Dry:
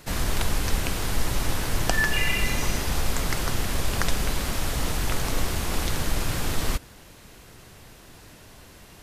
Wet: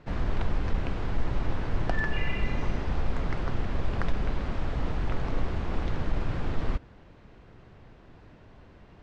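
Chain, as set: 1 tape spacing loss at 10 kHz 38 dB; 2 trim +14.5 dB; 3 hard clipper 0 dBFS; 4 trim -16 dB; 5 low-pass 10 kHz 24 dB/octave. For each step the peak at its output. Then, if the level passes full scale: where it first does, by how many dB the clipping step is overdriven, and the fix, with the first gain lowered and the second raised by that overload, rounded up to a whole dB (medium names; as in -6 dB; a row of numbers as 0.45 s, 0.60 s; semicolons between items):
-10.5 dBFS, +4.0 dBFS, 0.0 dBFS, -16.0 dBFS, -15.5 dBFS; step 2, 4.0 dB; step 2 +10.5 dB, step 4 -12 dB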